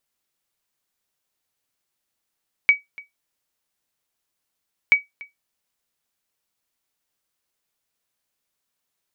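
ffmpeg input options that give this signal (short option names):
-f lavfi -i "aevalsrc='0.531*(sin(2*PI*2270*mod(t,2.23))*exp(-6.91*mod(t,2.23)/0.16)+0.0668*sin(2*PI*2270*max(mod(t,2.23)-0.29,0))*exp(-6.91*max(mod(t,2.23)-0.29,0)/0.16))':d=4.46:s=44100"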